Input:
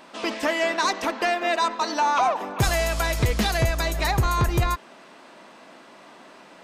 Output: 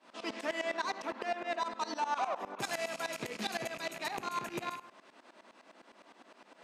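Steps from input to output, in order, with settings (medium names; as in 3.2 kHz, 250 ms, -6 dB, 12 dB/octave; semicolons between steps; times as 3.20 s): rattle on loud lows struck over -32 dBFS, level -21 dBFS; saturation -17 dBFS, distortion -17 dB; low-pass 11 kHz 12 dB/octave; 0.77–1.66 s: treble shelf 4.5 kHz -7 dB; high-pass 200 Hz 24 dB/octave; reverberation RT60 0.60 s, pre-delay 37 ms, DRR 10.5 dB; tremolo saw up 9.8 Hz, depth 90%; trim -7 dB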